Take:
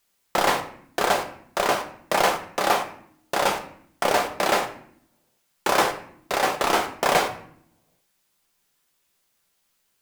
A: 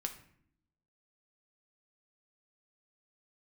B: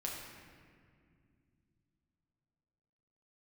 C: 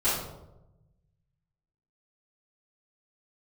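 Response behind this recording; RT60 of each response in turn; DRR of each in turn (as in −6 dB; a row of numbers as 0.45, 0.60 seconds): A; 0.65, 2.2, 0.95 seconds; 4.5, −3.0, −14.5 decibels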